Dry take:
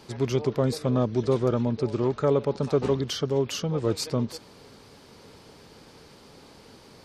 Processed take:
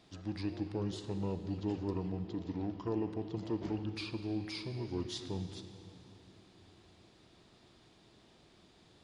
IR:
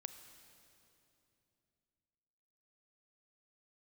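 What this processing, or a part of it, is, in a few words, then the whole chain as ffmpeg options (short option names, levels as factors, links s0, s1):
slowed and reverbed: -filter_complex "[0:a]equalizer=f=6300:t=o:w=0.37:g=5.5,asetrate=34398,aresample=44100[s0];[1:a]atrim=start_sample=2205[s1];[s0][s1]afir=irnorm=-1:irlink=0,volume=0.376"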